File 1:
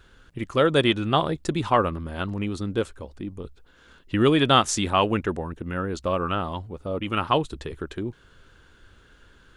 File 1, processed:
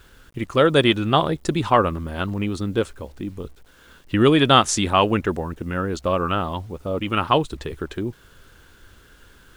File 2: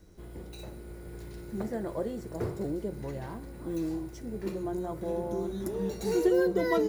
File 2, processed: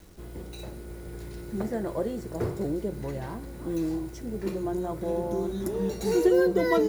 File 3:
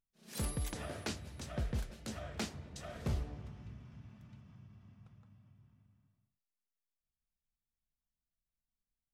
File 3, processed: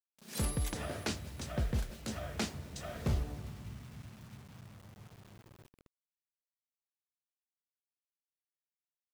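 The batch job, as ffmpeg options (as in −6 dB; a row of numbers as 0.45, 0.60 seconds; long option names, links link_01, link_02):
-af "acrusher=bits=9:mix=0:aa=0.000001,volume=3.5dB"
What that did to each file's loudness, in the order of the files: +3.5, +3.5, +3.5 LU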